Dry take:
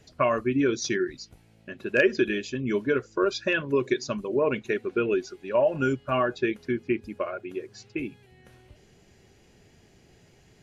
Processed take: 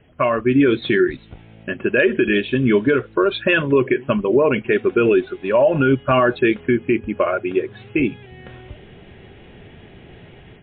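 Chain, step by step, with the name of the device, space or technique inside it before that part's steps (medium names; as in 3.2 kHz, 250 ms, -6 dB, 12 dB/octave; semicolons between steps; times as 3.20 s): low-bitrate web radio (level rider gain up to 11.5 dB; peak limiter -10.5 dBFS, peak gain reduction 8.5 dB; trim +4 dB; MP3 32 kbps 8 kHz)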